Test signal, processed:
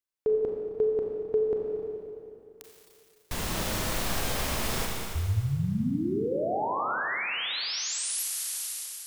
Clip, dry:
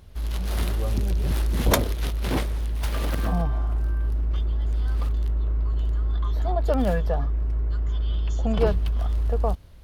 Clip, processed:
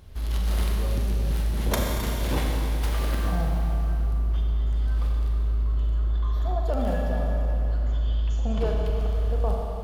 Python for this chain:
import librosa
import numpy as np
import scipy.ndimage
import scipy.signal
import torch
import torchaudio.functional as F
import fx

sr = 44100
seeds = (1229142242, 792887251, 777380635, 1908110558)

y = fx.rev_schroeder(x, sr, rt60_s=2.8, comb_ms=29, drr_db=-1.0)
y = fx.rider(y, sr, range_db=5, speed_s=0.5)
y = y * librosa.db_to_amplitude(-5.0)